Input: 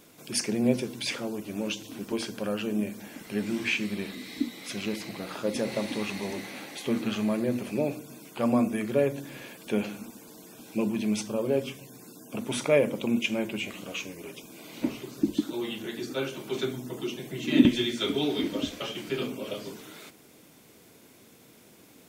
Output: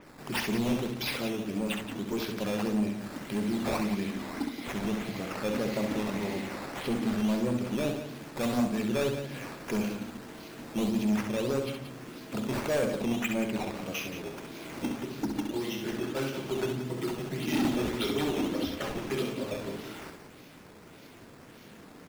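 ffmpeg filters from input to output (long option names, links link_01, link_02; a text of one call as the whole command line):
ffmpeg -i in.wav -filter_complex "[0:a]lowshelf=frequency=150:gain=5.5,asplit=2[link_01][link_02];[link_02]acompressor=threshold=-37dB:ratio=6,volume=-1dB[link_03];[link_01][link_03]amix=inputs=2:normalize=0,acrusher=samples=10:mix=1:aa=0.000001:lfo=1:lforange=10:lforate=1.7,asoftclip=type=hard:threshold=-22dB,aecho=1:1:66|177:0.501|0.316,adynamicequalizer=threshold=0.00562:dfrequency=5500:dqfactor=0.7:tfrequency=5500:tqfactor=0.7:attack=5:release=100:ratio=0.375:range=2.5:mode=cutabove:tftype=highshelf,volume=-3.5dB" out.wav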